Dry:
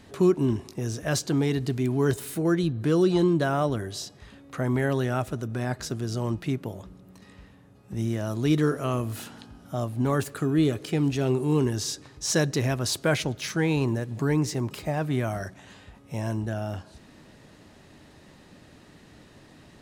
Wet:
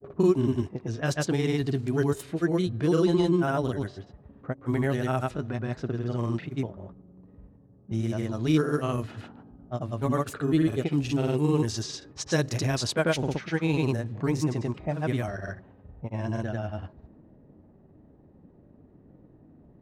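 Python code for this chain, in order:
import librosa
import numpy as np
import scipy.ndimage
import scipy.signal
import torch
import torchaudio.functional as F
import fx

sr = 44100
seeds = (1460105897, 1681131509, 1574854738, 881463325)

y = fx.env_lowpass(x, sr, base_hz=440.0, full_db=-21.5)
y = fx.granulator(y, sr, seeds[0], grain_ms=100.0, per_s=20.0, spray_ms=100.0, spread_st=0)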